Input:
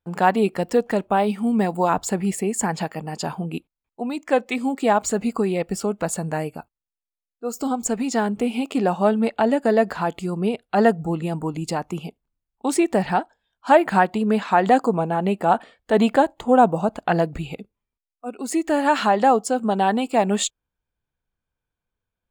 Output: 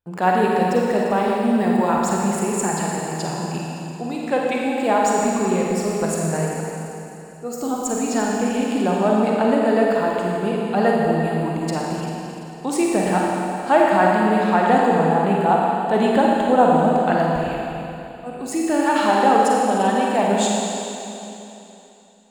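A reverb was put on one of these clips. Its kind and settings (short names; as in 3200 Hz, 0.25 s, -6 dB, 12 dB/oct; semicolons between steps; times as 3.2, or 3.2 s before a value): Schroeder reverb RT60 3.1 s, DRR -3 dB; gain -2.5 dB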